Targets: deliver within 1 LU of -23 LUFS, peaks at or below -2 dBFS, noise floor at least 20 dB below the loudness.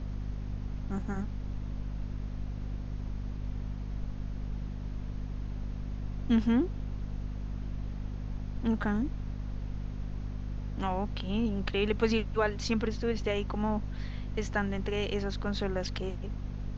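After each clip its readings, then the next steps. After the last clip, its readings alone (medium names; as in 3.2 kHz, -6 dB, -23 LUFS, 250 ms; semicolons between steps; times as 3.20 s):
hum 50 Hz; highest harmonic 250 Hz; hum level -34 dBFS; noise floor -39 dBFS; noise floor target -55 dBFS; loudness -34.5 LUFS; peak level -14.0 dBFS; loudness target -23.0 LUFS
-> hum notches 50/100/150/200/250 Hz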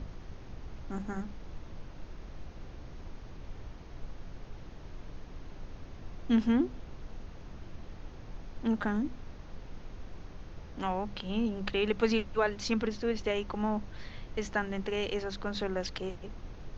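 hum not found; noise floor -47 dBFS; noise floor target -53 dBFS
-> noise print and reduce 6 dB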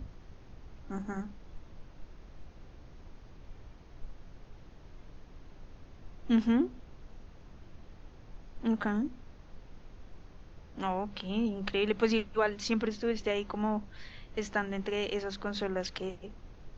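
noise floor -53 dBFS; loudness -33.0 LUFS; peak level -15.0 dBFS; loudness target -23.0 LUFS
-> trim +10 dB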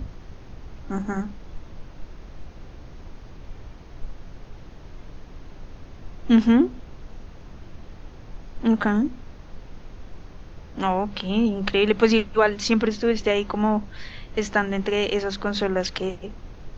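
loudness -23.0 LUFS; peak level -5.0 dBFS; noise floor -43 dBFS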